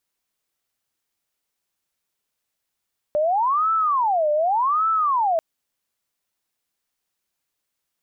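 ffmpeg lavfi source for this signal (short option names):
-f lavfi -i "aevalsrc='0.141*sin(2*PI*(958*t-362/(2*PI*0.86)*sin(2*PI*0.86*t)))':d=2.24:s=44100"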